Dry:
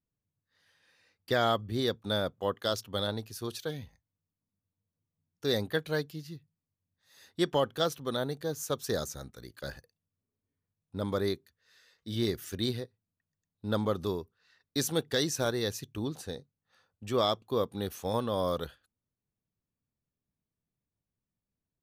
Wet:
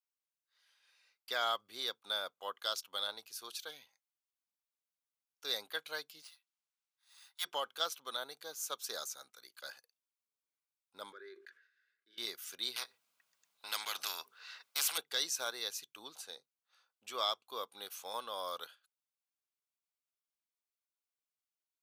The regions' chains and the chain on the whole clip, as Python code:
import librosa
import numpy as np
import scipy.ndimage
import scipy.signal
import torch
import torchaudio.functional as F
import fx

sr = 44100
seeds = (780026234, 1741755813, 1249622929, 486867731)

y = fx.chain(x, sr, fx.steep_highpass(hz=710.0, slope=72),
    fx.resample_bad(factor=3, down='none', up='hold'), at=(6.22, 7.45))
y = fx.chain(y, sr, fx.double_bandpass(hz=790.0, octaves=2.1),
    fx.sustainer(db_per_s=100.0), at=(11.12, 12.18))
y = fx.chain(y, sr, fx.high_shelf(hz=4200.0, db=-7.0),
    fx.spectral_comp(ratio=4.0), at=(12.76, 14.98))
y = scipy.signal.sosfilt(scipy.signal.butter(2, 1100.0, 'highpass', fs=sr, output='sos'), y)
y = fx.notch(y, sr, hz=1800.0, q=5.9)
y = F.gain(torch.from_numpy(y), -1.5).numpy()